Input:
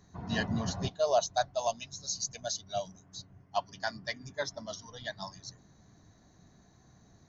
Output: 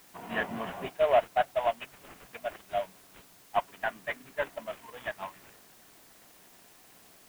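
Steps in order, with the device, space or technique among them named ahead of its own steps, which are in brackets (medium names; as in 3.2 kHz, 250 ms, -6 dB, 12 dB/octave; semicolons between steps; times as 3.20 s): army field radio (band-pass 380–3300 Hz; CVSD coder 16 kbps; white noise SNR 24 dB); trim +4.5 dB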